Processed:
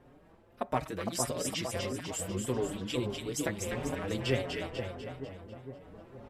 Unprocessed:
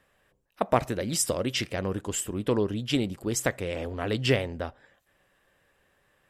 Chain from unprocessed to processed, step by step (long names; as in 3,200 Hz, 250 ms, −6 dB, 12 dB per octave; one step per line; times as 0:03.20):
wind on the microphone 530 Hz −43 dBFS
echo with a time of its own for lows and highs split 1,300 Hz, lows 458 ms, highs 247 ms, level −4 dB
barber-pole flanger 5.2 ms +1.6 Hz
level −4.5 dB